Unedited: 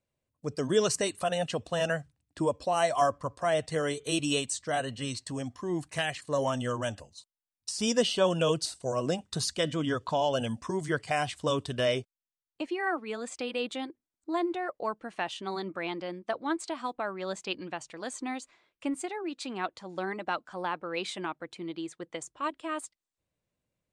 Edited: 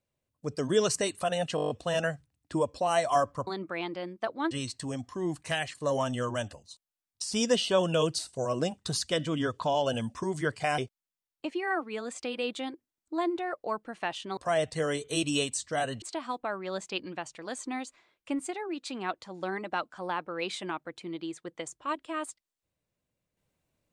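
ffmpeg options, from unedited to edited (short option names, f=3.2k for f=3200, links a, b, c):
-filter_complex "[0:a]asplit=13[a][b][c][d][e][f][g][h][i][j][k][l][m];[a]atrim=end=1.582[n];[b]atrim=start=1.558:end=1.582[o];[c]atrim=start=1.558:end=1.582[p];[d]atrim=start=1.558:end=1.582[q];[e]atrim=start=1.558:end=1.582[r];[f]atrim=start=1.558:end=1.582[s];[g]atrim=start=1.558:end=1.582[t];[h]atrim=start=1.558:end=3.332[u];[i]atrim=start=15.528:end=16.572[v];[j]atrim=start=4.978:end=11.252[w];[k]atrim=start=11.938:end=15.532[x];[l]atrim=start=3.328:end=4.982[y];[m]atrim=start=16.568[z];[n][o]acrossfade=d=0.004:c1=hsin:c2=hsin[aa];[aa][p]acrossfade=d=0.004:c1=hsin:c2=hsin[ab];[ab][q]acrossfade=d=0.004:c1=hsin:c2=hsin[ac];[ac][r]acrossfade=d=0.004:c1=hsin:c2=hsin[ad];[ad][s]acrossfade=d=0.004:c1=hsin:c2=hsin[ae];[ae][t]acrossfade=d=0.004:c1=hsin:c2=hsin[af];[af][u]acrossfade=d=0.004:c1=hsin:c2=hsin[ag];[ag][v]acrossfade=d=0.004:c1=hsin:c2=hsin[ah];[ah][w]acrossfade=d=0.004:c1=hsin:c2=hsin[ai];[ai][x]acrossfade=d=0.004:c1=hsin:c2=hsin[aj];[aj][y]acrossfade=d=0.004:c1=hsin:c2=hsin[ak];[ak][z]acrossfade=d=0.004:c1=hsin:c2=hsin"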